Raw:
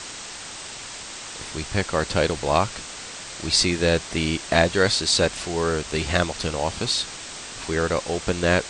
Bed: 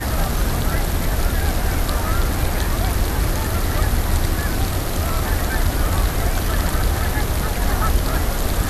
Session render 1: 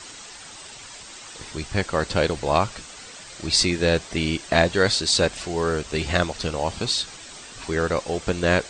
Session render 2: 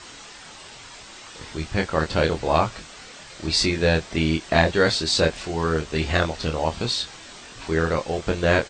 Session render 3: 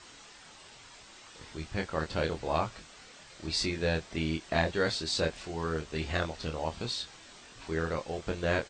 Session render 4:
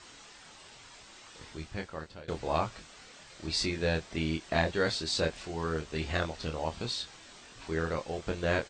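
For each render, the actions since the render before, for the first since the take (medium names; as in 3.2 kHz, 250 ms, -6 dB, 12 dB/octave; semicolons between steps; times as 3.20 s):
noise reduction 8 dB, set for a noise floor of -37 dBFS
distance through air 70 m; doubling 25 ms -5 dB
trim -10 dB
1.43–2.28 s: fade out, to -24 dB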